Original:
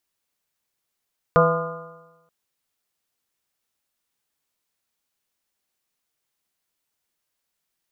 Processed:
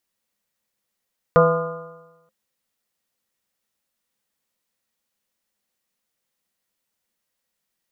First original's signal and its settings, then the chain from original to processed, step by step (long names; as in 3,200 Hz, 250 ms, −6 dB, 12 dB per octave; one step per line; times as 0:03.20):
stiff-string partials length 0.93 s, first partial 163 Hz, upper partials −16/4/−1/−12.5/−3/1.5/−5.5 dB, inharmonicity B 0.0028, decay 1.07 s, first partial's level −18 dB
hollow resonant body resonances 210/520/1,900 Hz, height 9 dB, ringing for 90 ms